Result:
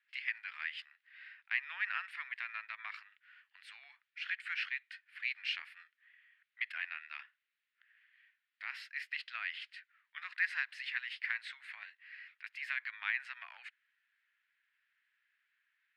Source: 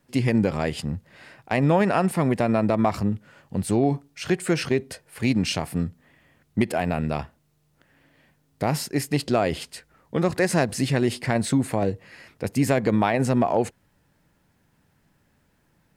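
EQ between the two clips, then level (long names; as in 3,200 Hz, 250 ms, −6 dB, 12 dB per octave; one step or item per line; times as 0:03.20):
Butterworth high-pass 1,700 Hz 36 dB per octave
high-frequency loss of the air 420 metres
high-shelf EQ 4,900 Hz −11 dB
+3.5 dB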